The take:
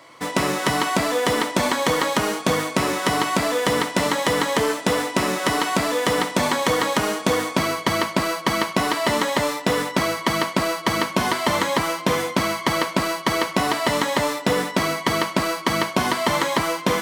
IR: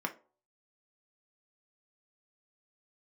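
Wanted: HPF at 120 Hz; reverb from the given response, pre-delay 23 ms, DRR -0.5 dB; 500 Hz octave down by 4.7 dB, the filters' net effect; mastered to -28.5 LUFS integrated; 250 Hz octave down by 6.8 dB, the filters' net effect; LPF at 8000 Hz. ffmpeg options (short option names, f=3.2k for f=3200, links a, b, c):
-filter_complex "[0:a]highpass=120,lowpass=8k,equalizer=f=250:t=o:g=-7.5,equalizer=f=500:t=o:g=-4,asplit=2[a][b];[1:a]atrim=start_sample=2205,adelay=23[c];[b][c]afir=irnorm=-1:irlink=0,volume=-4dB[d];[a][d]amix=inputs=2:normalize=0,volume=-8dB"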